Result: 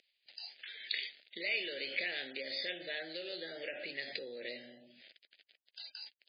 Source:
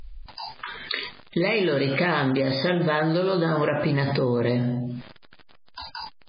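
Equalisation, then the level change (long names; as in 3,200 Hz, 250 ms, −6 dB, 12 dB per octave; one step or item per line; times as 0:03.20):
band-pass filter 280–3,300 Hz
Chebyshev band-stop filter 580–2,000 Hz, order 2
first difference
+3.5 dB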